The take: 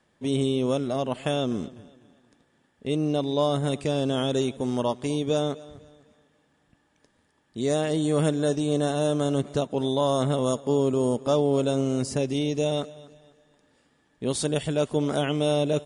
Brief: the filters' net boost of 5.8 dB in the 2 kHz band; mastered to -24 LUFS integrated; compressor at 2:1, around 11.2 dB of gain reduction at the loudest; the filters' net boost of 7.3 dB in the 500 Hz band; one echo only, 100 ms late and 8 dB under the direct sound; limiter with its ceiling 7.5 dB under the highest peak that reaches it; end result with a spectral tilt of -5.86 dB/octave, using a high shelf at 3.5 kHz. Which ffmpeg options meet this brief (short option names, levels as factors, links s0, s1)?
-af "equalizer=f=500:t=o:g=8.5,equalizer=f=2000:t=o:g=9,highshelf=f=3500:g=-4,acompressor=threshold=0.02:ratio=2,alimiter=level_in=1.12:limit=0.0631:level=0:latency=1,volume=0.891,aecho=1:1:100:0.398,volume=2.99"